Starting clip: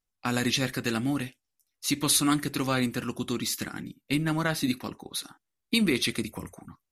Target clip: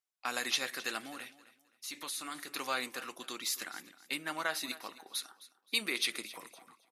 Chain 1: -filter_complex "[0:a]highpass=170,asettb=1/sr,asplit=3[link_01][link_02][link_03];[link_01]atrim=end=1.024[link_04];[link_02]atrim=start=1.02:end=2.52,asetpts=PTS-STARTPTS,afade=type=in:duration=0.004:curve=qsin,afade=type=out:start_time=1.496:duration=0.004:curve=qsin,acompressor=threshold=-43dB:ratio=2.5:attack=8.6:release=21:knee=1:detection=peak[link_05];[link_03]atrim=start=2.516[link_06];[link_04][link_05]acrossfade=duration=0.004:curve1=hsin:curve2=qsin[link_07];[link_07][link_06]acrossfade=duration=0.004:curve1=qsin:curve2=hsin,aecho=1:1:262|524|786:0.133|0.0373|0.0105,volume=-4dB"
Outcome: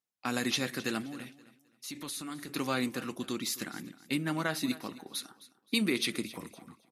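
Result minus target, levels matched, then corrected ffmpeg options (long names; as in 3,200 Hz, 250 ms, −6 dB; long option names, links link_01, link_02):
125 Hz band +17.5 dB
-filter_complex "[0:a]highpass=640,asettb=1/sr,asplit=3[link_01][link_02][link_03];[link_01]atrim=end=1.024[link_04];[link_02]atrim=start=1.02:end=2.52,asetpts=PTS-STARTPTS,afade=type=in:duration=0.004:curve=qsin,afade=type=out:start_time=1.496:duration=0.004:curve=qsin,acompressor=threshold=-43dB:ratio=2.5:attack=8.6:release=21:knee=1:detection=peak[link_05];[link_03]atrim=start=2.516[link_06];[link_04][link_05]acrossfade=duration=0.004:curve1=hsin:curve2=qsin[link_07];[link_07][link_06]acrossfade=duration=0.004:curve1=qsin:curve2=hsin,aecho=1:1:262|524|786:0.133|0.0373|0.0105,volume=-4dB"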